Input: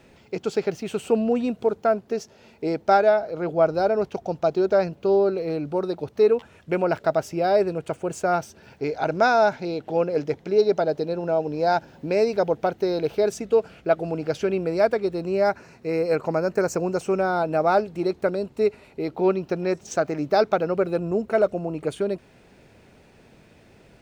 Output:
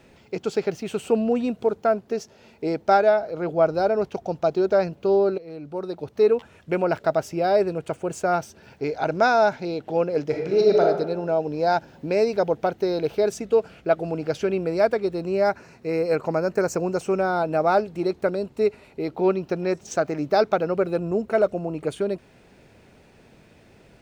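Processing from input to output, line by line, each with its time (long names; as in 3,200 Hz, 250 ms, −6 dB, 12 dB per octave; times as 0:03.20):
0:05.38–0:06.27: fade in, from −16 dB
0:10.27–0:10.82: thrown reverb, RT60 1 s, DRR −0.5 dB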